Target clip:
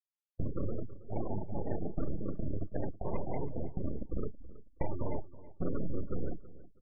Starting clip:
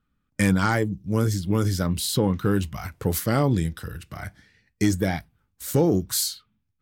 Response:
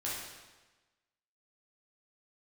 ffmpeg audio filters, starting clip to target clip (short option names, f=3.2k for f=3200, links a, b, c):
-filter_complex "[0:a]alimiter=limit=-17dB:level=0:latency=1:release=12,asetnsamples=n=441:p=0,asendcmd='3.85 highpass f 190;5.01 highpass f 64',highpass=770,asoftclip=type=tanh:threshold=-26.5dB,acompressor=threshold=-39dB:ratio=12,acrusher=samples=41:mix=1:aa=0.000001:lfo=1:lforange=24.6:lforate=0.55,aeval=exprs='abs(val(0))':c=same,asplit=2[a][b];[b]adelay=30,volume=-8.5dB[c];[a][c]amix=inputs=2:normalize=0,afftfilt=real='re*gte(hypot(re,im),0.00891)':imag='im*gte(hypot(re,im),0.00891)':win_size=1024:overlap=0.75,asplit=2[d][e];[e]adelay=324,lowpass=f=4.3k:p=1,volume=-18dB,asplit=2[f][g];[g]adelay=324,lowpass=f=4.3k:p=1,volume=0.25[h];[d][f][h]amix=inputs=3:normalize=0,volume=11dB"